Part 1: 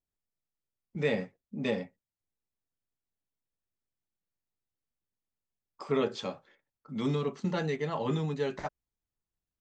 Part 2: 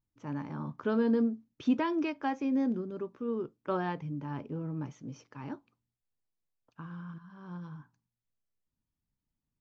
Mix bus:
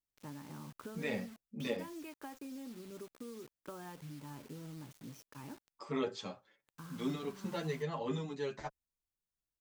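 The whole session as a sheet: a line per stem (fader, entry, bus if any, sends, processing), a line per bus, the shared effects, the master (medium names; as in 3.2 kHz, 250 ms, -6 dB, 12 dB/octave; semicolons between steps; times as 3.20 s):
-4.0 dB, 0.00 s, no send, endless flanger 7.9 ms +0.98 Hz
-5.0 dB, 0.00 s, no send, compression 16:1, threshold -39 dBFS, peak gain reduction 18 dB; bit crusher 9-bit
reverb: none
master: treble shelf 4.8 kHz +6 dB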